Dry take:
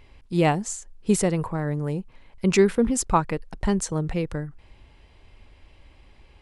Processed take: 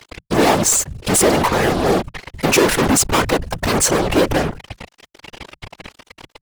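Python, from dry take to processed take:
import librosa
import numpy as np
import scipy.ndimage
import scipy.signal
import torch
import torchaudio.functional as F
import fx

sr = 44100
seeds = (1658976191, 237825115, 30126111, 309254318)

y = fx.fuzz(x, sr, gain_db=43.0, gate_db=-45.0)
y = fx.low_shelf_res(y, sr, hz=240.0, db=-6.5, q=1.5)
y = fx.whisperise(y, sr, seeds[0])
y = F.gain(torch.from_numpy(y), 1.0).numpy()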